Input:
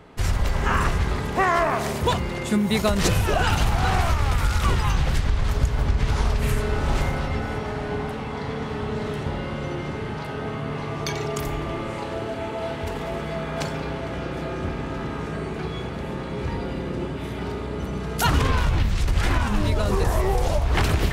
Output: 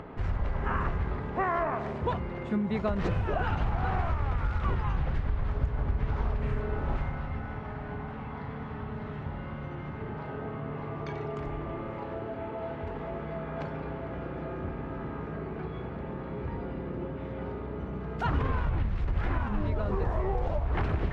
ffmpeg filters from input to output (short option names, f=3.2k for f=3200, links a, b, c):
-filter_complex "[0:a]asettb=1/sr,asplit=3[a][b][c];[a]atrim=end=6.964[d];[b]atrim=start=6.96:end=10.01,asetpts=PTS-STARTPTS,afade=t=in:d=0.004:c=qsin,afade=t=out:st=3.046:d=0.004:c=qsin,equalizer=f=430:t=o:w=1.3:g=-7.5[e];[c]atrim=start=10.006[f];[d][e]acrossfade=d=0.004:c1=hsin:c2=qsin[g];[g][f]acrossfade=d=0.004:c1=qsin:c2=hsin,asettb=1/sr,asplit=3[h][i][j];[h]atrim=end=17.044[k];[i]atrim=start=17.04:end=17.52,asetpts=PTS-STARTPTS,afade=t=in:d=0.004:c=qsin,afade=t=out:st=0.476:d=0.004:c=qsin,aeval=exprs='val(0)+0.0158*sin(2*PI*530*n/s)':c=same[l];[j]atrim=start=17.516[m];[k][l]acrossfade=d=0.004:c1=hsin:c2=qsin[n];[n][m]acrossfade=d=0.004:c1=qsin:c2=hsin,lowpass=1.7k,acompressor=mode=upward:threshold=-25dB:ratio=2.5,volume=-7.5dB"